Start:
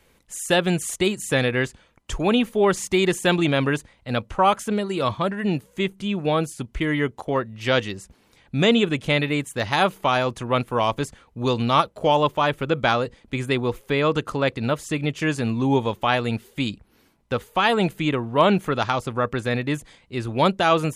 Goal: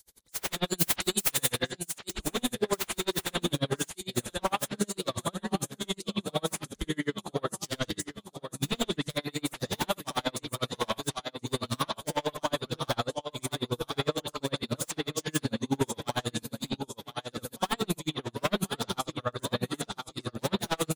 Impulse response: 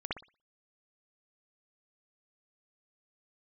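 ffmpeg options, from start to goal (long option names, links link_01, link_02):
-filter_complex "[0:a]aecho=1:1:1026|2052|3078|4104|5130:0.355|0.17|0.0817|0.0392|0.0188,aexciter=amount=9.3:drive=8.3:freq=3900,aeval=exprs='0.237*(abs(mod(val(0)/0.237+3,4)-2)-1)':channel_layout=same,asettb=1/sr,asplit=3[link_01][link_02][link_03];[link_01]atrim=end=0.704[link_04];[link_02]atrim=start=0.7:end=1.57,asetpts=PTS-STARTPTS,afade=type=in:duration=0.004:curve=qsin,afade=type=out:start_time=0.866:duration=0.004:curve=qsin,highshelf=frequency=4900:gain=9.5[link_05];[link_03]atrim=start=1.566[link_06];[link_04][link_05]acrossfade=duration=0.004:curve1=hsin:curve2=qsin[link_07];[link_07][link_06]acrossfade=duration=0.004:curve1=qsin:curve2=hsin[link_08];[1:a]atrim=start_sample=2205,atrim=end_sample=6174[link_09];[link_08][link_09]afir=irnorm=-1:irlink=0,aeval=exprs='val(0)*pow(10,-37*(0.5-0.5*cos(2*PI*11*n/s))/20)':channel_layout=same,volume=-7dB"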